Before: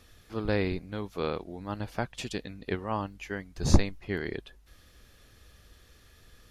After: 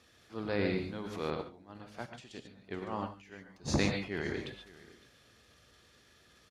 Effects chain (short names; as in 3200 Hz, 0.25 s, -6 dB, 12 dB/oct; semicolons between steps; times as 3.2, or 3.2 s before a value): LPF 8500 Hz 12 dB/oct; low shelf 96 Hz -9.5 dB; transient shaper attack -3 dB, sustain +9 dB; HPF 73 Hz; echo 0.559 s -20.5 dB; non-linear reverb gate 0.16 s rising, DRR 3.5 dB; 1.3–3.68 upward expander 2.5:1, over -37 dBFS; gain -4 dB